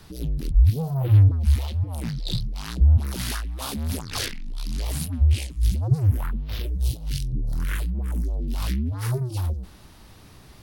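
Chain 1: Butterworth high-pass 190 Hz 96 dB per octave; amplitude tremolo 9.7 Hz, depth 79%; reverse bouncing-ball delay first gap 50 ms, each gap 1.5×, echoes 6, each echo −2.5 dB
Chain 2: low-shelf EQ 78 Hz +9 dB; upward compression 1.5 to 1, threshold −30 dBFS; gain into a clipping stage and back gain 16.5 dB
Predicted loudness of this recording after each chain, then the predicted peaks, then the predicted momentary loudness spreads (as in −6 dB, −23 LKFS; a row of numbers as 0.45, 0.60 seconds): −35.5, −24.0 LKFS; −15.0, −16.5 dBFS; 9, 6 LU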